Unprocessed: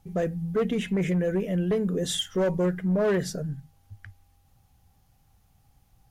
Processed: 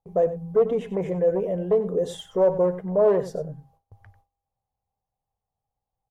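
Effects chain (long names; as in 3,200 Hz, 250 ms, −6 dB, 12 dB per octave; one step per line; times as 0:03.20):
tilt shelving filter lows +3.5 dB, about 1,100 Hz
on a send: single-tap delay 95 ms −14 dB
on the sum: noise gate with hold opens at −36 dBFS
flat-topped bell 680 Hz +14 dB
level −8.5 dB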